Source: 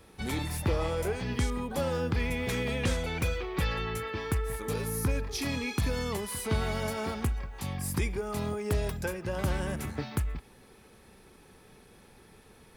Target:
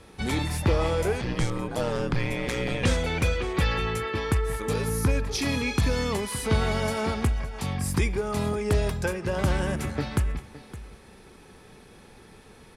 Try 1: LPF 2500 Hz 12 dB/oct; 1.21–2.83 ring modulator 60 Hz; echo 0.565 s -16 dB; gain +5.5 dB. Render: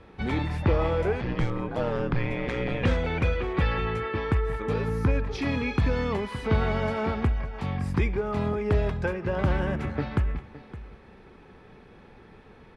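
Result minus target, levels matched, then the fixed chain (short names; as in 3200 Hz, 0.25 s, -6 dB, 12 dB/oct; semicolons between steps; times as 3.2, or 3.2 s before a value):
8000 Hz band -18.5 dB
LPF 9900 Hz 12 dB/oct; 1.21–2.83 ring modulator 60 Hz; echo 0.565 s -16 dB; gain +5.5 dB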